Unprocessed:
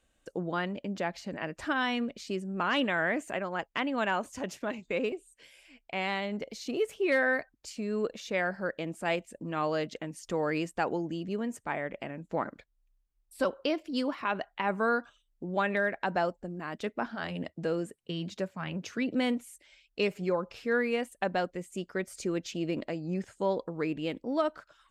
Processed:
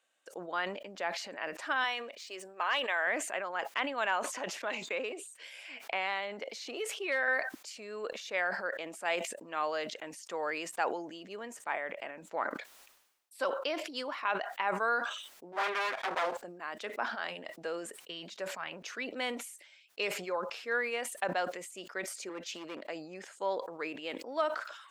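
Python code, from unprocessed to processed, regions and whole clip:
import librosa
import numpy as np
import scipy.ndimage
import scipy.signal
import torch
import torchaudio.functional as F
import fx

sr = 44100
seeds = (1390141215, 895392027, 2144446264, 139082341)

y = fx.chain(x, sr, fx.median_filter(points=3),
    fx.highpass(hz=420.0, slope=12),
    fx.notch(hz=1400.0, q=12.0), at=(1.84, 3.07))
y = fx.chain(y, sr, fx.high_shelf(hz=8300.0, db=-6.0),
    fx.band_squash(depth_pct=70), at=(4.24, 7.28))
y = fx.chain(y, sr, fx.lower_of_two(delay_ms=7.7),
    fx.doppler_dist(depth_ms=0.63), at=(15.52, 16.37))
y = fx.chain(y, sr, fx.clip_hard(threshold_db=-28.5),
    fx.band_widen(depth_pct=70), at=(22.29, 22.85))
y = scipy.signal.sosfilt(scipy.signal.butter(2, 660.0, 'highpass', fs=sr, output='sos'), y)
y = fx.high_shelf(y, sr, hz=6200.0, db=-4.0)
y = fx.sustainer(y, sr, db_per_s=63.0)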